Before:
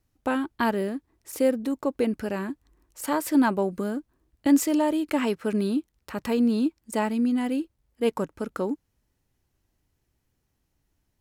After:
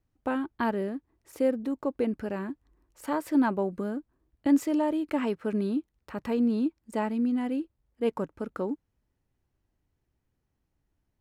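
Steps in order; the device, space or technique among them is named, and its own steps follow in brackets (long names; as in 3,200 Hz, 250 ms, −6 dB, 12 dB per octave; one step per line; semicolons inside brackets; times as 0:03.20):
through cloth (high-shelf EQ 3,400 Hz −11.5 dB)
level −3 dB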